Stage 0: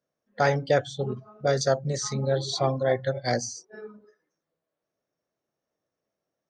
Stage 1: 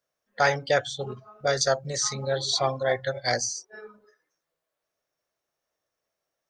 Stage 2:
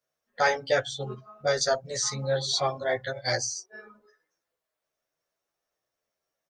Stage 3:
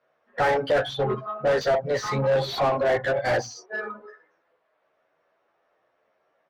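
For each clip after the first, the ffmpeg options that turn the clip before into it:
-af "equalizer=f=210:t=o:w=2.7:g=-14,volume=1.88"
-filter_complex "[0:a]asplit=2[s0][s1];[s1]adelay=10.7,afreqshift=0.8[s2];[s0][s2]amix=inputs=2:normalize=1,volume=1.19"
-filter_complex "[0:a]asoftclip=type=tanh:threshold=0.0944,lowpass=2700,asplit=2[s0][s1];[s1]highpass=f=720:p=1,volume=14.1,asoftclip=type=tanh:threshold=0.1[s2];[s0][s2]amix=inputs=2:normalize=0,lowpass=f=1000:p=1,volume=0.501,volume=2"

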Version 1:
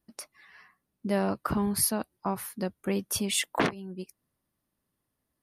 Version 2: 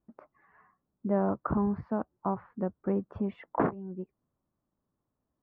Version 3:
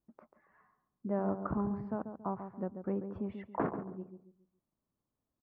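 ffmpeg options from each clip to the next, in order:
-af "lowpass=f=1300:w=0.5412,lowpass=f=1300:w=1.3066"
-filter_complex "[0:a]asplit=2[s0][s1];[s1]adelay=139,lowpass=f=1000:p=1,volume=0.422,asplit=2[s2][s3];[s3]adelay=139,lowpass=f=1000:p=1,volume=0.36,asplit=2[s4][s5];[s5]adelay=139,lowpass=f=1000:p=1,volume=0.36,asplit=2[s6][s7];[s7]adelay=139,lowpass=f=1000:p=1,volume=0.36[s8];[s0][s2][s4][s6][s8]amix=inputs=5:normalize=0,volume=0.501"

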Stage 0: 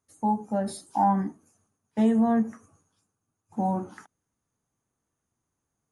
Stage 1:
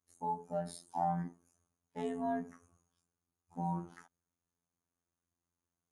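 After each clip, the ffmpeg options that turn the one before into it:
-af "afftfilt=real='hypot(re,im)*cos(PI*b)':imag='0':win_size=2048:overlap=0.75,volume=0.501"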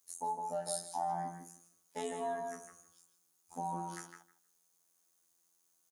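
-filter_complex "[0:a]bass=f=250:g=-15,treble=f=4000:g=14,acompressor=threshold=0.00501:ratio=2,asplit=2[s0][s1];[s1]adelay=157,lowpass=f=2200:p=1,volume=0.668,asplit=2[s2][s3];[s3]adelay=157,lowpass=f=2200:p=1,volume=0.18,asplit=2[s4][s5];[s5]adelay=157,lowpass=f=2200:p=1,volume=0.18[s6];[s2][s4][s6]amix=inputs=3:normalize=0[s7];[s0][s7]amix=inputs=2:normalize=0,volume=2.11"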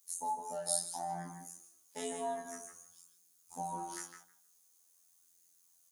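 -af "highshelf=f=3500:g=9.5,flanger=delay=19:depth=3.8:speed=0.46,volume=1.12"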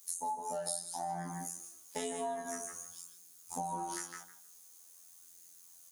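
-af "acompressor=threshold=0.00447:ratio=4,volume=3.35"

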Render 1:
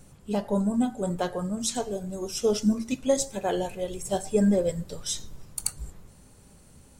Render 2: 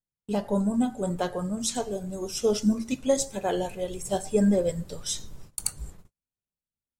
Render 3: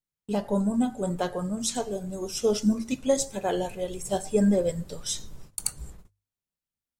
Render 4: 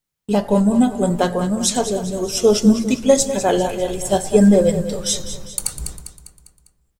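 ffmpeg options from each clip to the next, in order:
-af "agate=range=0.00501:threshold=0.00708:ratio=16:detection=peak"
-af "bandreject=f=50:t=h:w=6,bandreject=f=100:t=h:w=6"
-filter_complex "[0:a]asplit=2[s0][s1];[s1]aecho=0:1:200|400|600|800|1000:0.266|0.133|0.0665|0.0333|0.0166[s2];[s0][s2]amix=inputs=2:normalize=0,alimiter=level_in=3.16:limit=0.891:release=50:level=0:latency=1"

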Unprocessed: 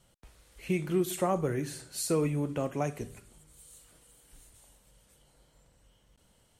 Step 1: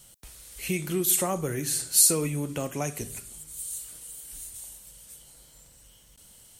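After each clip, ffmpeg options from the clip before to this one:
-filter_complex "[0:a]lowshelf=f=420:g=4.5,asplit=2[s0][s1];[s1]acompressor=threshold=0.02:ratio=6,volume=1.12[s2];[s0][s2]amix=inputs=2:normalize=0,crystalizer=i=6.5:c=0,volume=0.501"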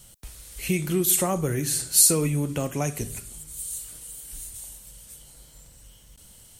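-af "lowshelf=f=160:g=7,volume=1.26"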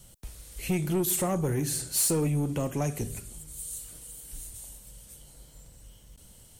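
-filter_complex "[0:a]acrossover=split=810|1700[s0][s1][s2];[s0]acontrast=27[s3];[s3][s1][s2]amix=inputs=3:normalize=0,asoftclip=type=tanh:threshold=0.15,volume=0.596"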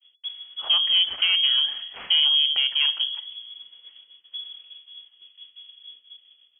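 -af "adynamicsmooth=sensitivity=3.5:basefreq=1500,agate=range=0.0224:threshold=0.00447:ratio=3:detection=peak,lowpass=f=2900:t=q:w=0.5098,lowpass=f=2900:t=q:w=0.6013,lowpass=f=2900:t=q:w=0.9,lowpass=f=2900:t=q:w=2.563,afreqshift=-3400,volume=2.24"

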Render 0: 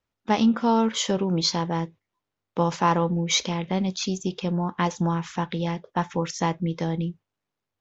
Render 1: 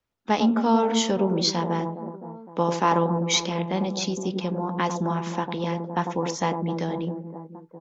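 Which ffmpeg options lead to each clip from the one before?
-filter_complex "[0:a]acrossover=split=170|1100[s0][s1][s2];[s0]acompressor=threshold=0.00891:ratio=6[s3];[s1]aecho=1:1:100|260|516|925.6|1581:0.631|0.398|0.251|0.158|0.1[s4];[s3][s4][s2]amix=inputs=3:normalize=0"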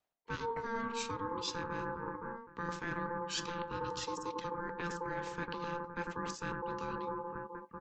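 -af "aeval=exprs='val(0)*sin(2*PI*690*n/s)':c=same,areverse,acompressor=threshold=0.0178:ratio=5,areverse,volume=0.891"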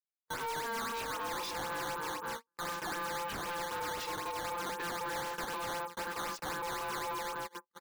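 -filter_complex "[0:a]agate=range=0.00562:threshold=0.00794:ratio=16:detection=peak,asplit=2[s0][s1];[s1]highpass=f=720:p=1,volume=28.2,asoftclip=type=tanh:threshold=0.0841[s2];[s0][s2]amix=inputs=2:normalize=0,lowpass=f=3900:p=1,volume=0.501,acrusher=samples=10:mix=1:aa=0.000001:lfo=1:lforange=16:lforate=3.9,volume=0.376"

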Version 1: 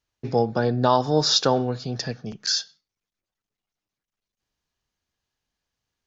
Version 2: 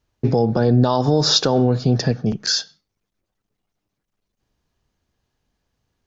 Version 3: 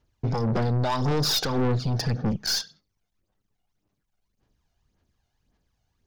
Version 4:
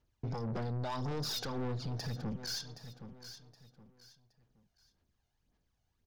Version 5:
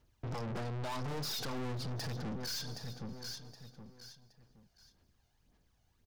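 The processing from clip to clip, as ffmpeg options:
-filter_complex "[0:a]tiltshelf=f=940:g=5.5,acrossover=split=3500[s0][s1];[s0]alimiter=limit=0.168:level=0:latency=1:release=79[s2];[s2][s1]amix=inputs=2:normalize=0,volume=2.66"
-af "aphaser=in_gain=1:out_gain=1:delay=1.4:decay=0.55:speed=1.8:type=sinusoidal,aeval=exprs='(tanh(7.94*val(0)+0.3)-tanh(0.3))/7.94':c=same,volume=0.708"
-af "aecho=1:1:770|1540|2310:0.126|0.0378|0.0113,alimiter=level_in=1.12:limit=0.0631:level=0:latency=1:release=96,volume=0.891,volume=0.473"
-af "aecho=1:1:205|410|615|820:0.0708|0.0404|0.023|0.0131,aeval=exprs='(tanh(178*val(0)+0.35)-tanh(0.35))/178':c=same,volume=2.37"

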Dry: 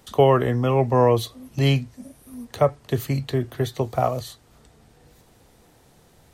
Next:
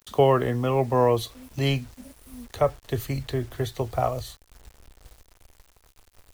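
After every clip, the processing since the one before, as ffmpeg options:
-af "acrusher=bits=7:mix=0:aa=0.000001,asubboost=boost=11.5:cutoff=53,volume=0.75"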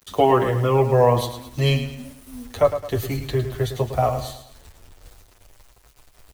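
-filter_complex "[0:a]asplit=2[s0][s1];[s1]aecho=0:1:107|214|321|428:0.316|0.13|0.0532|0.0218[s2];[s0][s2]amix=inputs=2:normalize=0,asplit=2[s3][s4];[s4]adelay=8.3,afreqshift=0.39[s5];[s3][s5]amix=inputs=2:normalize=1,volume=2.11"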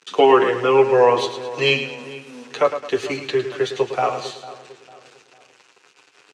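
-filter_complex "[0:a]highpass=f=210:w=0.5412,highpass=f=210:w=1.3066,equalizer=f=230:t=q:w=4:g=-9,equalizer=f=430:t=q:w=4:g=4,equalizer=f=630:t=q:w=4:g=-8,equalizer=f=1500:t=q:w=4:g=5,equalizer=f=2600:t=q:w=4:g=9,lowpass=f=7100:w=0.5412,lowpass=f=7100:w=1.3066,asplit=2[s0][s1];[s1]adelay=450,lowpass=f=1800:p=1,volume=0.15,asplit=2[s2][s3];[s3]adelay=450,lowpass=f=1800:p=1,volume=0.4,asplit=2[s4][s5];[s5]adelay=450,lowpass=f=1800:p=1,volume=0.4[s6];[s0][s2][s4][s6]amix=inputs=4:normalize=0,volume=1.5"

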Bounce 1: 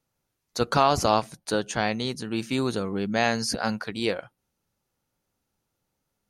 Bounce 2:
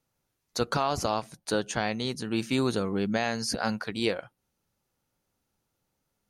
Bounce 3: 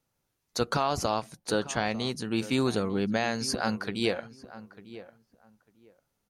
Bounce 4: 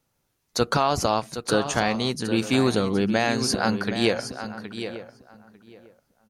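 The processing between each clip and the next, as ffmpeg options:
-af "alimiter=limit=0.188:level=0:latency=1:release=449"
-filter_complex "[0:a]asplit=2[s0][s1];[s1]adelay=898,lowpass=f=1800:p=1,volume=0.168,asplit=2[s2][s3];[s3]adelay=898,lowpass=f=1800:p=1,volume=0.19[s4];[s0][s2][s4]amix=inputs=3:normalize=0"
-af "aecho=1:1:768:0.299,volume=1.88"

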